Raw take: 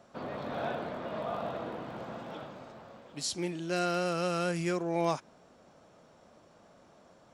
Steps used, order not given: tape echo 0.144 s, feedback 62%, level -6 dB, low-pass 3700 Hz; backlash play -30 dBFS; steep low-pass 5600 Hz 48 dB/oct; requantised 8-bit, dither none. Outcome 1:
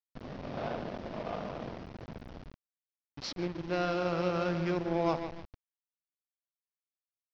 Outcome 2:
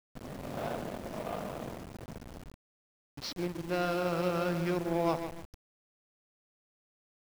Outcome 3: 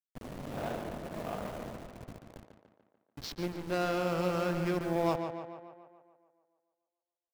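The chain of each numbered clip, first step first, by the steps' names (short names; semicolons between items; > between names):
tape echo > backlash > requantised > steep low-pass; tape echo > backlash > steep low-pass > requantised; steep low-pass > backlash > requantised > tape echo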